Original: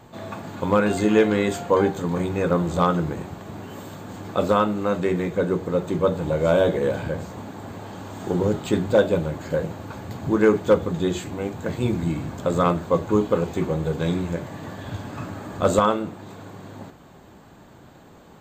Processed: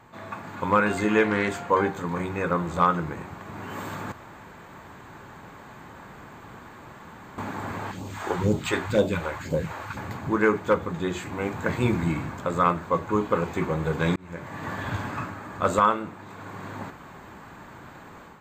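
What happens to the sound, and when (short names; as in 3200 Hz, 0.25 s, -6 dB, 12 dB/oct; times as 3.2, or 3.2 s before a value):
1.24–1.7 Doppler distortion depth 0.17 ms
4.12–7.38 room tone
7.91–9.97 phaser stages 2, 2 Hz, lowest notch 140–1600 Hz
14.16–14.74 fade in
whole clip: band shelf 1500 Hz +8 dB; AGC gain up to 8.5 dB; gain -7 dB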